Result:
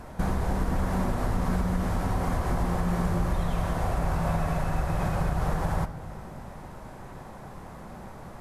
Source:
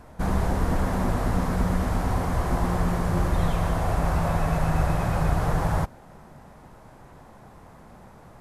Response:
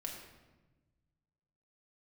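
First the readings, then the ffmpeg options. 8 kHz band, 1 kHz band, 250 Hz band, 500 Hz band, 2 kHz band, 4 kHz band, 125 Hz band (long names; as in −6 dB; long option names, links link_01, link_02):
−3.5 dB, −3.0 dB, −2.5 dB, −3.0 dB, −3.0 dB, −3.5 dB, −3.0 dB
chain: -filter_complex "[0:a]acompressor=threshold=-29dB:ratio=6,asplit=2[link_01][link_02];[1:a]atrim=start_sample=2205,asetrate=37044,aresample=44100[link_03];[link_02][link_03]afir=irnorm=-1:irlink=0,volume=-4.5dB[link_04];[link_01][link_04]amix=inputs=2:normalize=0,volume=2dB"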